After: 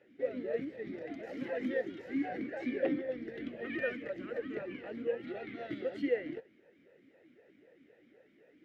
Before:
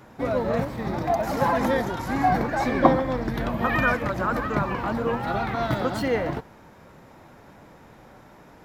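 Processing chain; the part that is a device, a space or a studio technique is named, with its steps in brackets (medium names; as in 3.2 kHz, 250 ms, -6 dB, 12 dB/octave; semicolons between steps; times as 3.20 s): talk box (valve stage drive 9 dB, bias 0.45; talking filter e-i 3.9 Hz)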